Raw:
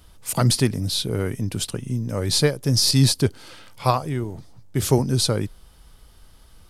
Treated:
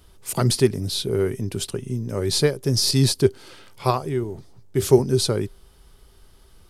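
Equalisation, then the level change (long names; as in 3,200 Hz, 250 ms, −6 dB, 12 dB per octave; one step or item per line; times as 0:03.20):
parametric band 390 Hz +12 dB 0.21 octaves
−2.0 dB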